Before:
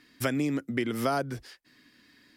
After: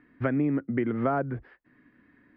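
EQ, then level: low-pass 1.9 kHz 24 dB/octave; bass shelf 410 Hz +4 dB; 0.0 dB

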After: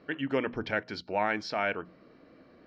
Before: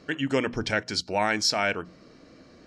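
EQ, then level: distance through air 330 m; bass shelf 170 Hz -9 dB; -1.5 dB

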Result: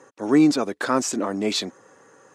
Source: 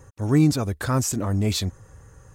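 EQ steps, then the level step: high-pass 250 Hz 24 dB/octave; distance through air 68 m; +5.0 dB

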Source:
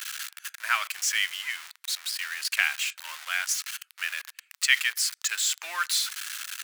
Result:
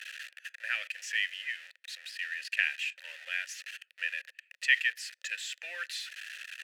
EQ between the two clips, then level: treble shelf 6.7 kHz +6.5 dB; dynamic bell 730 Hz, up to -6 dB, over -43 dBFS, Q 0.9; vowel filter e; +7.5 dB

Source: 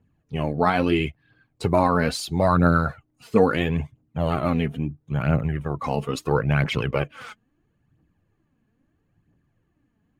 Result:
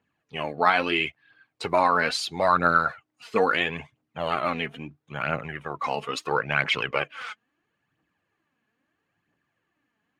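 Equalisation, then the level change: band-pass filter 2.3 kHz, Q 0.6; +5.0 dB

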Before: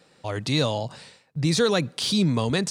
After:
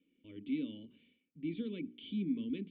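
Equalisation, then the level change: cascade formant filter i; hum notches 60/120/180/240/300/360/420 Hz; static phaser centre 310 Hz, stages 4; -3.5 dB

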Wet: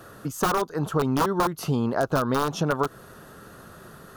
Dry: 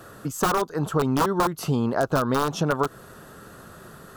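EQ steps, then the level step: band-stop 7.7 kHz, Q 11; -1.0 dB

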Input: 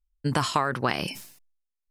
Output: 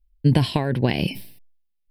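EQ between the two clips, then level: bass shelf 340 Hz +9.5 dB; static phaser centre 3 kHz, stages 4; +3.5 dB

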